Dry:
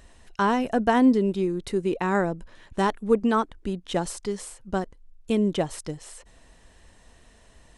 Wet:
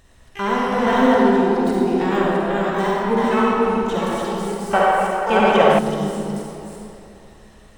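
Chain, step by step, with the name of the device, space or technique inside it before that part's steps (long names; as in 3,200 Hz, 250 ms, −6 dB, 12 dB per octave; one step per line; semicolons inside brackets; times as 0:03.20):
delay that plays each chunk backwards 338 ms, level −2 dB
de-essing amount 75%
shimmer-style reverb (pitch-shifted copies added +12 semitones −9 dB; convolution reverb RT60 3.0 s, pre-delay 41 ms, DRR −5 dB)
0:04.73–0:05.79: flat-topped bell 1,200 Hz +13 dB 3 octaves
level −2.5 dB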